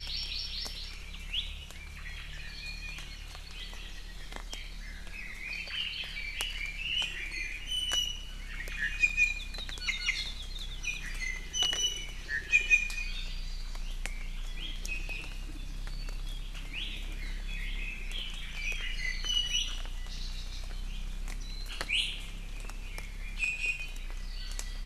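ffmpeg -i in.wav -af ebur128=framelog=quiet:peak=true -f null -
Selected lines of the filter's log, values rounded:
Integrated loudness:
  I:         -34.1 LUFS
  Threshold: -44.3 LUFS
Loudness range:
  LRA:        10.6 LU
  Threshold: -54.1 LUFS
  LRA low:   -40.8 LUFS
  LRA high:  -30.2 LUFS
True peak:
  Peak:       -9.1 dBFS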